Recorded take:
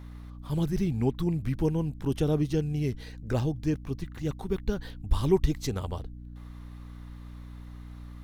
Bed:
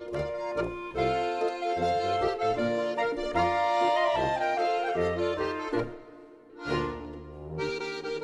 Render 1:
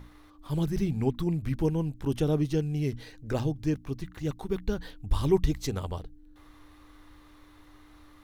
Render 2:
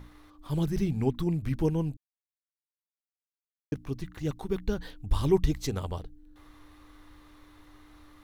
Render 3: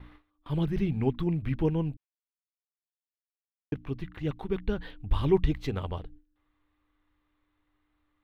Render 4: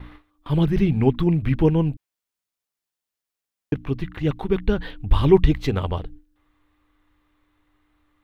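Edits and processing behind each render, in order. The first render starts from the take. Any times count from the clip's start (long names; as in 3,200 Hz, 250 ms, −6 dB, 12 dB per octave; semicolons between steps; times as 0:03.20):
mains-hum notches 60/120/180/240 Hz
0:01.97–0:03.72: silence
noise gate with hold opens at −41 dBFS; high shelf with overshoot 4,300 Hz −13.5 dB, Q 1.5
level +9 dB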